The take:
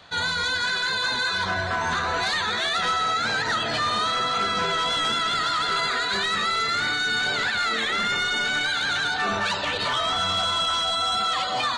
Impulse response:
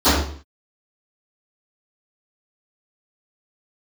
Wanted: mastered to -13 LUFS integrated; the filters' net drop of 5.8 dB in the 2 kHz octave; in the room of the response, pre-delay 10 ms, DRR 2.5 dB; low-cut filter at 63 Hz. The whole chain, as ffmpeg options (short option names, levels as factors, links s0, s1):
-filter_complex "[0:a]highpass=63,equalizer=f=2000:t=o:g=-8.5,asplit=2[s0][s1];[1:a]atrim=start_sample=2205,adelay=10[s2];[s1][s2]afir=irnorm=-1:irlink=0,volume=0.0422[s3];[s0][s3]amix=inputs=2:normalize=0,volume=3.55"